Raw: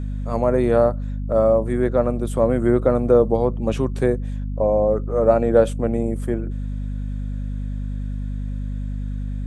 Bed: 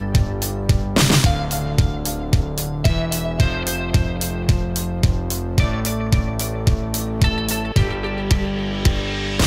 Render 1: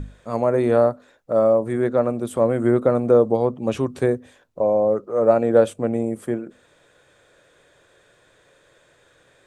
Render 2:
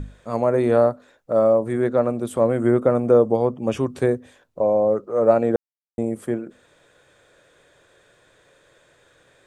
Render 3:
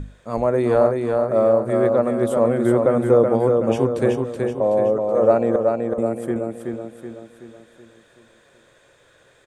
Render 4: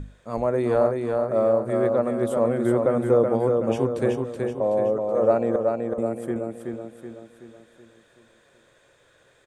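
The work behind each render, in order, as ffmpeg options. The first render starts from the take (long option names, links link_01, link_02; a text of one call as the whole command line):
ffmpeg -i in.wav -af "bandreject=frequency=50:width_type=h:width=6,bandreject=frequency=100:width_type=h:width=6,bandreject=frequency=150:width_type=h:width=6,bandreject=frequency=200:width_type=h:width=6,bandreject=frequency=250:width_type=h:width=6" out.wav
ffmpeg -i in.wav -filter_complex "[0:a]asettb=1/sr,asplit=3[link_01][link_02][link_03];[link_01]atrim=end=2.604[link_04];[link_02]atrim=start=2.6:end=3.82,asetpts=PTS-STARTPTS,afade=type=in:duration=0.004:curve=qsin,afade=type=out:start_time=1.216:duration=0.004:curve=qsin,asuperstop=centerf=4000:order=4:qfactor=6.3[link_05];[link_03]atrim=start=3.816[link_06];[link_04][link_05]acrossfade=duration=0.004:curve1=hsin:curve2=qsin[link_07];[link_07][link_06]acrossfade=duration=0.004:curve1=qsin:curve2=hsin,asplit=3[link_08][link_09][link_10];[link_08]atrim=end=5.56,asetpts=PTS-STARTPTS,afade=type=out:start_time=5.556:duration=0.004:curve=hsin[link_11];[link_09]atrim=start=5.56:end=5.98,asetpts=PTS-STARTPTS,volume=0[link_12];[link_10]atrim=start=5.98,asetpts=PTS-STARTPTS,afade=type=in:duration=0.004:curve=hsin[link_13];[link_11][link_12][link_13]concat=n=3:v=0:a=1" out.wav
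ffmpeg -i in.wav -af "aecho=1:1:376|752|1128|1504|1880|2256:0.631|0.297|0.139|0.0655|0.0308|0.0145" out.wav
ffmpeg -i in.wav -af "volume=-4dB" out.wav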